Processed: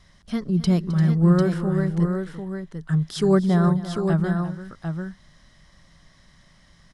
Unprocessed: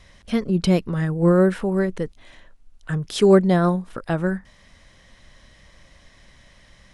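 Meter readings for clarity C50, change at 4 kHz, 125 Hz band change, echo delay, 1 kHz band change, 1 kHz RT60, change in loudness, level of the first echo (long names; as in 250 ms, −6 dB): no reverb audible, −3.5 dB, +3.0 dB, 262 ms, −3.0 dB, no reverb audible, −1.5 dB, −16.5 dB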